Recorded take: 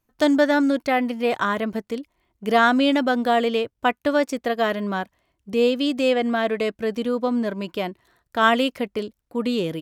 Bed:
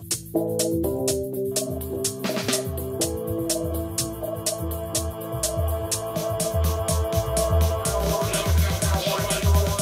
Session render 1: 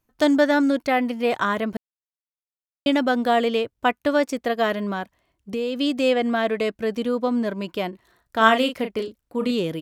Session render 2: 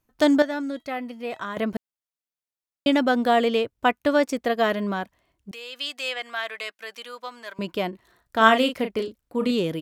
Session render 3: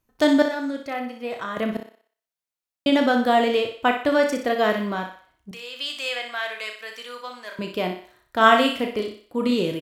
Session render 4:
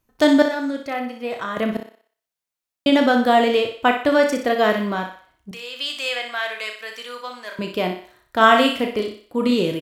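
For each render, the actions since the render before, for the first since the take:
1.77–2.86 s: mute; 4.79–5.79 s: compression, threshold -22 dBFS; 7.89–9.51 s: doubling 36 ms -8 dB
0.42–1.57 s: feedback comb 650 Hz, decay 0.2 s, mix 70%; 5.51–7.59 s: high-pass 1.3 kHz
doubling 33 ms -8 dB; thinning echo 61 ms, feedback 45%, high-pass 360 Hz, level -7 dB
trim +3 dB; peak limiter -1 dBFS, peak gain reduction 2.5 dB

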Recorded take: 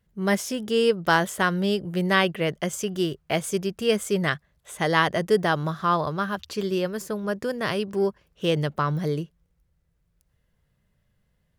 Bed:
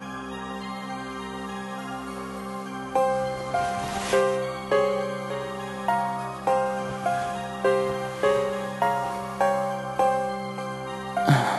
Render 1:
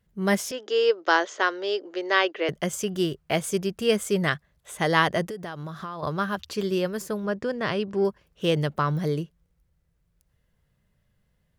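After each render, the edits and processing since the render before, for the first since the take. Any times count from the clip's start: 0.51–2.49 s: Chebyshev band-pass 290–6600 Hz, order 5; 5.29–6.03 s: compression 10:1, threshold -31 dBFS; 7.26–8.05 s: distance through air 91 m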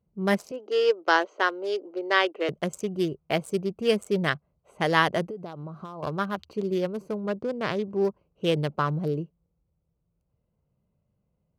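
local Wiener filter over 25 samples; high-pass 120 Hz 6 dB/octave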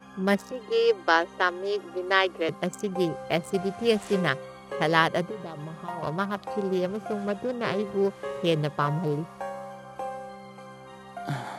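add bed -12.5 dB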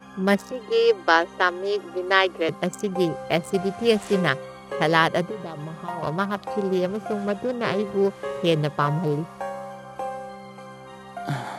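trim +3.5 dB; peak limiter -3 dBFS, peak gain reduction 2 dB

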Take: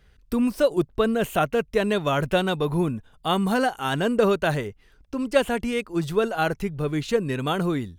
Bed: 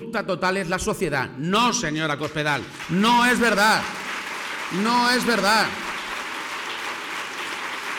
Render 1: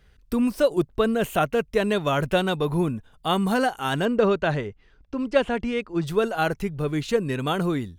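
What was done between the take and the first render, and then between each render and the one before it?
4.05–6.07 s: distance through air 110 m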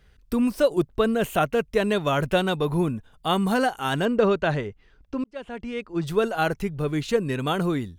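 5.24–6.12 s: fade in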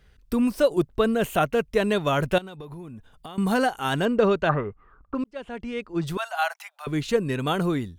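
2.38–3.38 s: compression 16:1, threshold -35 dBFS; 4.49–5.15 s: resonant low-pass 1.2 kHz, resonance Q 14; 6.17–6.87 s: steep high-pass 660 Hz 72 dB/octave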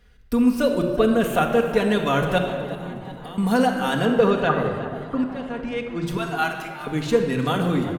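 frequency-shifting echo 367 ms, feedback 55%, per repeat +110 Hz, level -17 dB; simulated room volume 3200 m³, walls mixed, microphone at 1.8 m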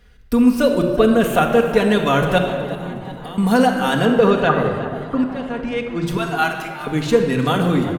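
trim +4.5 dB; peak limiter -3 dBFS, peak gain reduction 2.5 dB

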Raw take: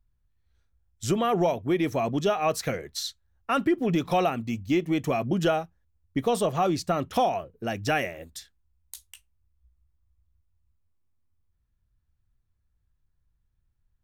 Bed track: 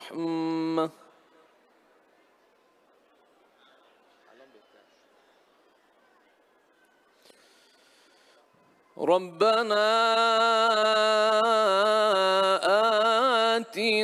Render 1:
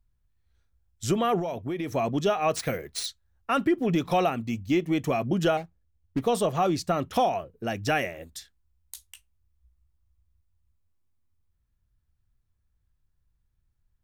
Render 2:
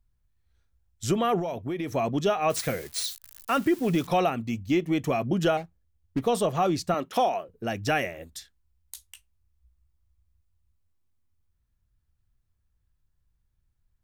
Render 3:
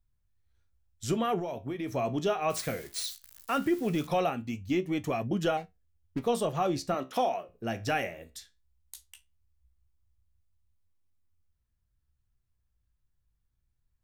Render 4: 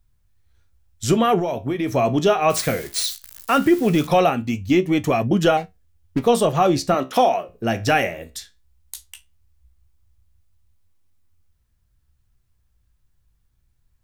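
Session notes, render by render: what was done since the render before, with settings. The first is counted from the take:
1.39–1.93 s: compression, threshold -27 dBFS; 2.56–3.06 s: careless resampling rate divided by 3×, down none, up hold; 5.57–6.22 s: median filter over 41 samples
2.50–4.07 s: zero-crossing glitches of -31.5 dBFS; 6.94–7.49 s: high-pass 250 Hz
flange 0.19 Hz, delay 9.1 ms, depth 9.1 ms, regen +67%
trim +11.5 dB

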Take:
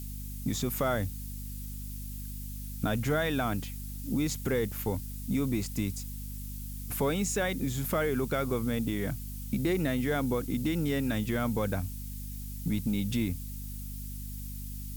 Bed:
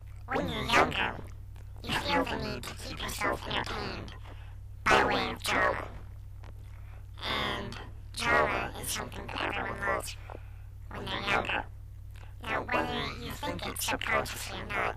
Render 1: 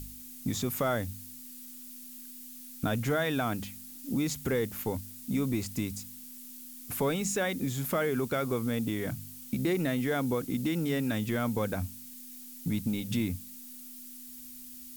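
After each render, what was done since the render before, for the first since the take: de-hum 50 Hz, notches 4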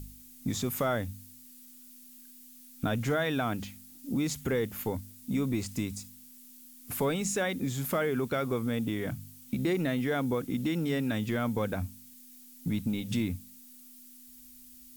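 noise print and reduce 6 dB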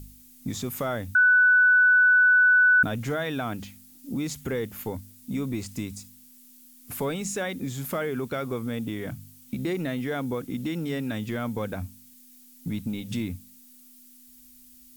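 1.15–2.83 s: bleep 1.49 kHz -14.5 dBFS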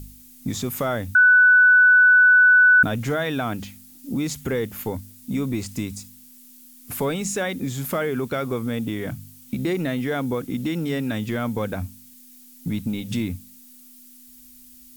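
trim +4.5 dB

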